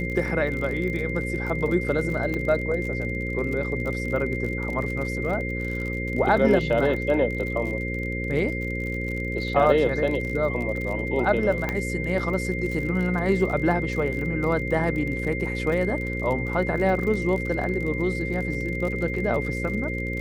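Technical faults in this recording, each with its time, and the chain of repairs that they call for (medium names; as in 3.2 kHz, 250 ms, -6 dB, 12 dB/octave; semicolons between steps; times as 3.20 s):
buzz 60 Hz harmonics 9 -30 dBFS
crackle 44 per s -31 dBFS
whine 2.1 kHz -31 dBFS
2.34 s: pop -17 dBFS
11.69 s: pop -13 dBFS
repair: de-click; band-stop 2.1 kHz, Q 30; de-hum 60 Hz, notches 9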